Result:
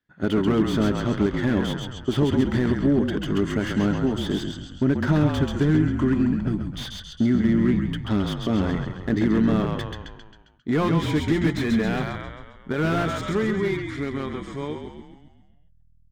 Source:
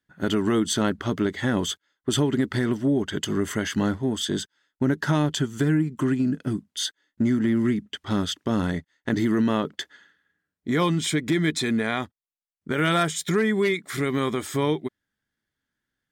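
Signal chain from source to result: fade out at the end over 3.94 s; de-hum 173.5 Hz, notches 3; in parallel at -11 dB: hysteresis with a dead band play -24 dBFS; on the sum: distance through air 110 m; on a send: frequency-shifting echo 134 ms, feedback 55%, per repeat -40 Hz, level -6.5 dB; on the sum: slew-rate limiter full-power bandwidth 78 Hz

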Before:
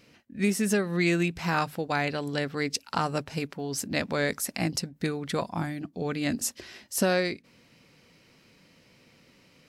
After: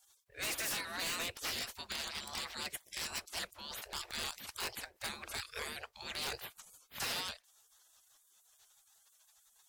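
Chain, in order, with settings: spectral gate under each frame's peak -25 dB weak; wavefolder -39.5 dBFS; vibrato with a chosen wave saw up 5.9 Hz, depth 100 cents; trim +8 dB

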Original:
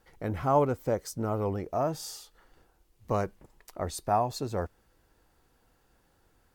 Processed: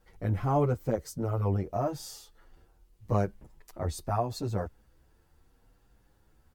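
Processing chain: bass shelf 190 Hz +9.5 dB; endless flanger 8.4 ms +0.72 Hz

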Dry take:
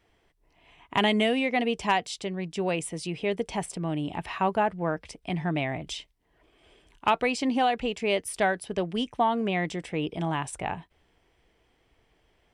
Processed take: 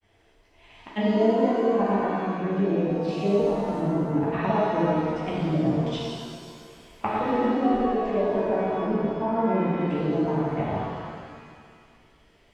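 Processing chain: granulator 100 ms, grains 20 per s, pitch spread up and down by 0 st; low-pass that closes with the level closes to 580 Hz, closed at -28 dBFS; pitch-shifted reverb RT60 1.9 s, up +7 st, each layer -8 dB, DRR -7 dB

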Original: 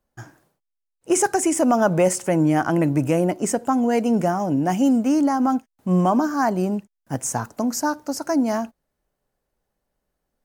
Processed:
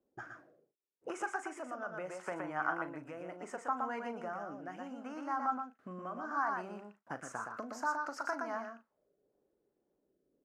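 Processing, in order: compression 20:1, threshold -30 dBFS, peak gain reduction 18 dB; doubling 39 ms -12.5 dB; gain riding 2 s; delay 119 ms -4.5 dB; rotary cabinet horn 0.7 Hz; auto-wah 350–1300 Hz, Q 2.8, up, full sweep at -40 dBFS; trim +10 dB

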